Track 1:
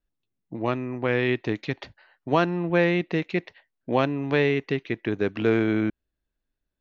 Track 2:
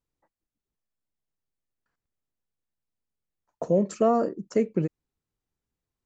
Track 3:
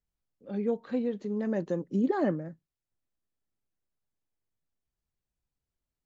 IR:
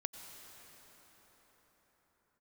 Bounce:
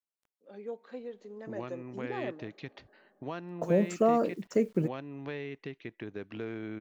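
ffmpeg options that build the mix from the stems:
-filter_complex "[0:a]acompressor=threshold=-38dB:ratio=2,adelay=950,volume=-6dB[link_01];[1:a]acrusher=bits=9:mix=0:aa=0.000001,volume=-3dB[link_02];[2:a]highpass=410,volume=-8dB,asplit=2[link_03][link_04];[link_04]volume=-15dB[link_05];[3:a]atrim=start_sample=2205[link_06];[link_05][link_06]afir=irnorm=-1:irlink=0[link_07];[link_01][link_02][link_03][link_07]amix=inputs=4:normalize=0"

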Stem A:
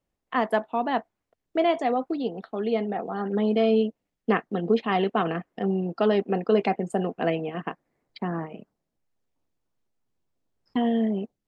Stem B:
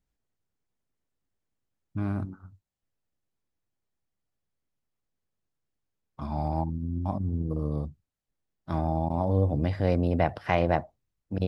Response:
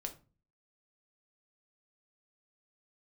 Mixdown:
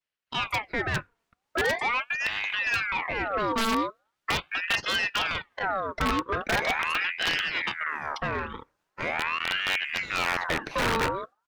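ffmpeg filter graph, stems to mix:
-filter_complex "[0:a]adynamicequalizer=threshold=0.0178:dfrequency=630:dqfactor=2.5:tfrequency=630:tqfactor=2.5:attack=5:release=100:ratio=0.375:range=2:mode=cutabove:tftype=bell,dynaudnorm=framelen=120:gausssize=7:maxgain=11dB,volume=-12.5dB,asplit=2[link_01][link_02];[link_02]volume=-22dB[link_03];[1:a]acrossover=split=620[link_04][link_05];[link_04]aeval=exprs='val(0)*(1-0.7/2+0.7/2*cos(2*PI*3.7*n/s))':channel_layout=same[link_06];[link_05]aeval=exprs='val(0)*(1-0.7/2-0.7/2*cos(2*PI*3.7*n/s))':channel_layout=same[link_07];[link_06][link_07]amix=inputs=2:normalize=0,adelay=300,volume=2dB[link_08];[2:a]atrim=start_sample=2205[link_09];[link_03][link_09]afir=irnorm=-1:irlink=0[link_10];[link_01][link_08][link_10]amix=inputs=3:normalize=0,aeval=exprs='(mod(6.68*val(0)+1,2)-1)/6.68':channel_layout=same,asplit=2[link_11][link_12];[link_12]highpass=frequency=720:poles=1,volume=18dB,asoftclip=type=tanh:threshold=-16dB[link_13];[link_11][link_13]amix=inputs=2:normalize=0,lowpass=frequency=4500:poles=1,volume=-6dB,aeval=exprs='val(0)*sin(2*PI*1500*n/s+1500*0.55/0.41*sin(2*PI*0.41*n/s))':channel_layout=same"

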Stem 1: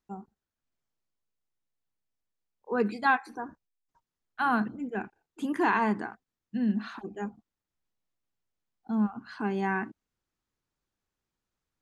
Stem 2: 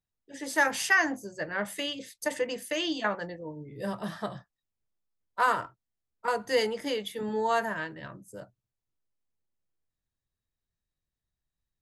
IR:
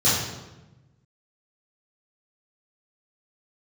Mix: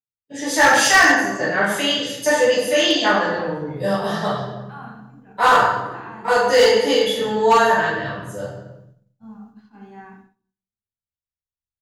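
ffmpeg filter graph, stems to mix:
-filter_complex "[0:a]agate=range=-33dB:threshold=-46dB:ratio=3:detection=peak,adelay=300,volume=-15.5dB,asplit=2[link_01][link_02];[link_02]volume=-15.5dB[link_03];[1:a]asubboost=boost=3.5:cutoff=65,volume=2.5dB,asplit=2[link_04][link_05];[link_05]volume=-5.5dB[link_06];[2:a]atrim=start_sample=2205[link_07];[link_03][link_06]amix=inputs=2:normalize=0[link_08];[link_08][link_07]afir=irnorm=-1:irlink=0[link_09];[link_01][link_04][link_09]amix=inputs=3:normalize=0,agate=range=-33dB:threshold=-38dB:ratio=3:detection=peak,acrossover=split=340|3000[link_10][link_11][link_12];[link_10]acompressor=threshold=-44dB:ratio=1.5[link_13];[link_13][link_11][link_12]amix=inputs=3:normalize=0,volume=8dB,asoftclip=hard,volume=-8dB"

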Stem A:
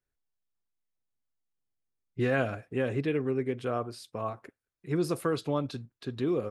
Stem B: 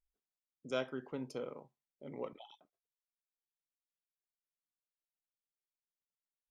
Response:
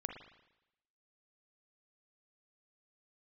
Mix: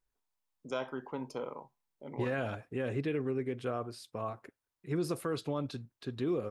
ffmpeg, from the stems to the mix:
-filter_complex "[0:a]volume=-3dB[link_01];[1:a]equalizer=frequency=940:width_type=o:width=0.61:gain=11.5,volume=1.5dB[link_02];[link_01][link_02]amix=inputs=2:normalize=0,alimiter=level_in=0.5dB:limit=-24dB:level=0:latency=1:release=44,volume=-0.5dB"

